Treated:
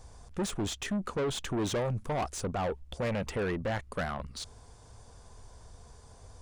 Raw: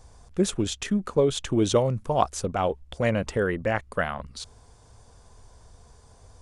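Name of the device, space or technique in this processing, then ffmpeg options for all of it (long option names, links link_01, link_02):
saturation between pre-emphasis and de-emphasis: -af "highshelf=frequency=5200:gain=11,asoftclip=type=tanh:threshold=-27.5dB,highshelf=frequency=5200:gain=-11"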